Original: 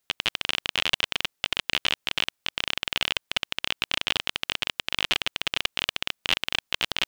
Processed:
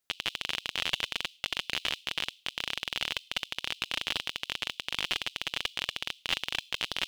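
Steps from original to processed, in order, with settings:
on a send: inverse Chebyshev high-pass filter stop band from 1,700 Hz, stop band 40 dB + convolution reverb RT60 0.45 s, pre-delay 6 ms, DRR 21 dB
on the sum: level −6 dB

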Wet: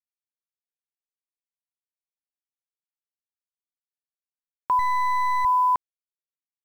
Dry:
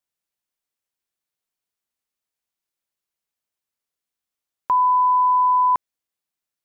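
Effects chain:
0:04.79–0:05.45: gain on one half-wave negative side −12 dB
bit reduction 8 bits
level −3 dB

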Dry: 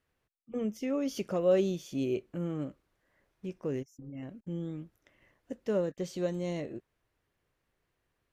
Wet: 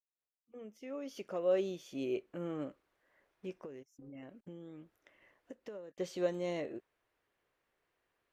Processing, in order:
fade in at the beginning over 2.72 s
bass and treble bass −13 dB, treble −6 dB
0:03.62–0:05.98: downward compressor 6 to 1, threshold −47 dBFS, peak gain reduction 18.5 dB
level +1 dB

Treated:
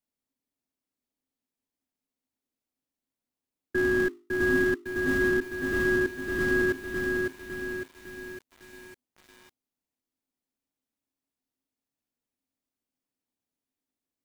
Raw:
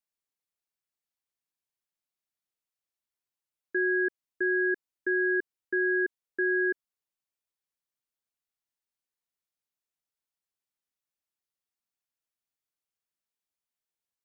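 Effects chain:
mains-hum notches 50/100/150/200/250/300/350/400 Hz
in parallel at −7 dB: sample-rate reduction 1,600 Hz, jitter 20%
on the sum: parametric band 260 Hz +15 dB 0.38 octaves
feedback echo at a low word length 555 ms, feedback 55%, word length 8 bits, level −3 dB
level −1.5 dB

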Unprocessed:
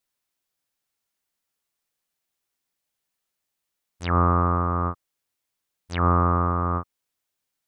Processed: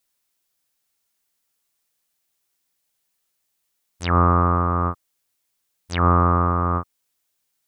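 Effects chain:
high-shelf EQ 4,200 Hz +6 dB
level +3 dB

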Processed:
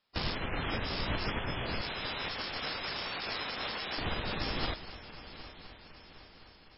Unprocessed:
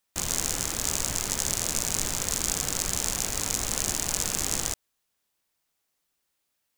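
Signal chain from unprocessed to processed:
0:01.81–0:03.98: high-pass filter 660 Hz 6 dB per octave
brickwall limiter −13 dBFS, peak gain reduction 9 dB
echo machine with several playback heads 255 ms, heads first and third, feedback 66%, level −16.5 dB
level +4 dB
MP3 16 kbit/s 12,000 Hz

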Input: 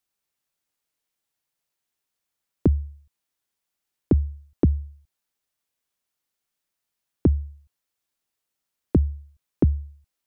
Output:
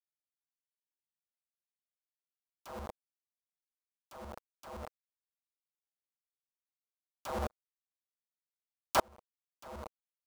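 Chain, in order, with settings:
wrap-around overflow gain 25 dB
downward compressor 8 to 1, threshold −39 dBFS, peak gain reduction 11.5 dB
hum with harmonics 120 Hz, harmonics 5, −59 dBFS 0 dB per octave
bit reduction 7 bits
flat-topped bell 810 Hz +9.5 dB
tremolo with a ramp in dB swelling 2 Hz, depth 39 dB
level +9.5 dB

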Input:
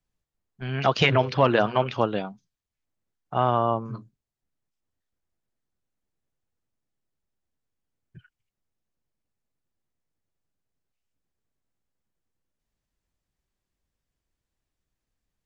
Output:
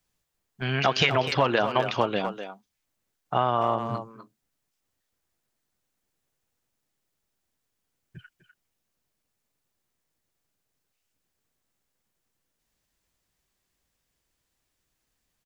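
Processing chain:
spectral tilt +1.5 dB per octave
downward compressor 2.5 to 1, threshold −29 dBFS, peak gain reduction 10.5 dB
far-end echo of a speakerphone 250 ms, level −8 dB
level +6.5 dB

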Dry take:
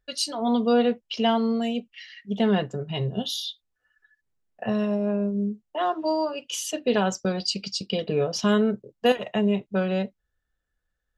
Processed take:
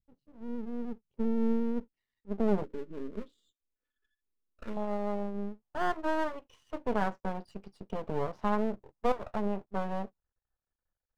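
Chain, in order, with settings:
low-pass filter sweep 160 Hz → 1,000 Hz, 0:00.68–0:04.31
half-wave rectification
0:02.64–0:04.77: phaser with its sweep stopped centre 310 Hz, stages 4
level −6.5 dB

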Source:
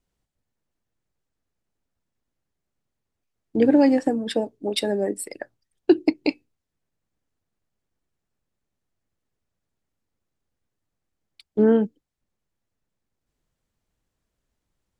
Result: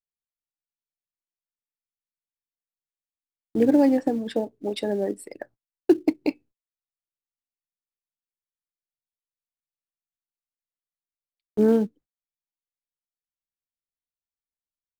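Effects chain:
high-shelf EQ 2,300 Hz −10.5 dB
noise gate −47 dBFS, range −29 dB
in parallel at −11 dB: floating-point word with a short mantissa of 2 bits
on the sum: level −3.5 dB

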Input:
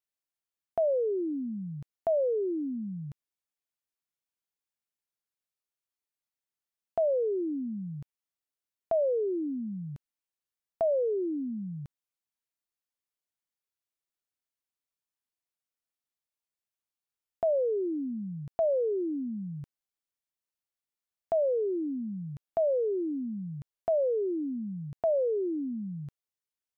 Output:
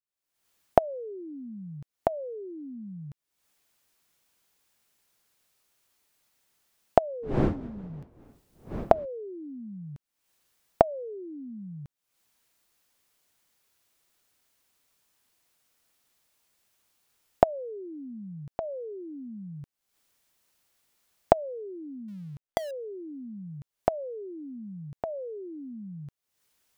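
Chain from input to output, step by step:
0:22.08–0:22.71: gap after every zero crossing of 0.17 ms
camcorder AGC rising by 62 dB per second
0:07.22–0:09.04: wind on the microphone 340 Hz −30 dBFS
level −9.5 dB

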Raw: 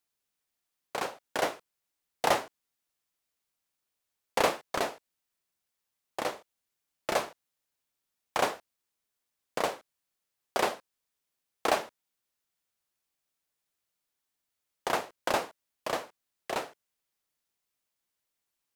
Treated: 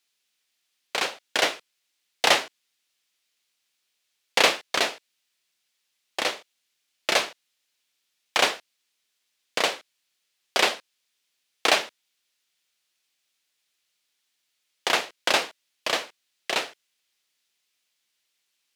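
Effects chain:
meter weighting curve D
level +3 dB

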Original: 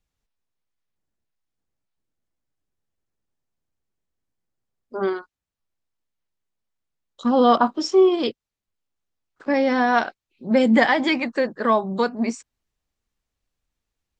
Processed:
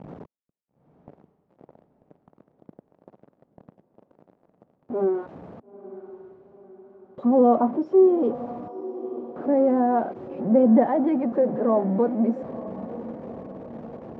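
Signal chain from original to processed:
converter with a step at zero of −23 dBFS
Chebyshev band-pass filter 170–650 Hz, order 2
noise gate with hold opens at −52 dBFS
feedback delay with all-pass diffusion 938 ms, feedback 52%, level −15 dB
level −1 dB

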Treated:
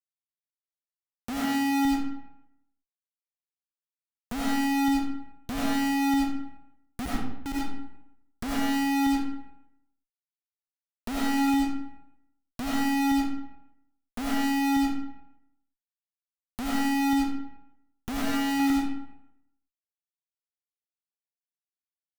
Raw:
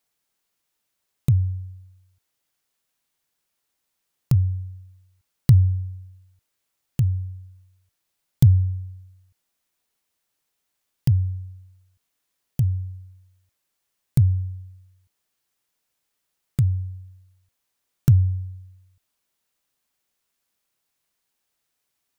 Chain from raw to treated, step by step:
0:07.03–0:07.44: high-pass filter 580 Hz → 230 Hz 12 dB per octave
0:11.37–0:12.60: downward compressor 16 to 1, threshold −42 dBFS, peak gain reduction 16 dB
0:18.19–0:18.59: spectral tilt −2 dB per octave
soft clipping −19.5 dBFS, distortion −8 dB
frequency shifter −370 Hz
comparator with hysteresis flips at −43.5 dBFS
comb and all-pass reverb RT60 0.81 s, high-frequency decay 0.7×, pre-delay 45 ms, DRR −6 dB

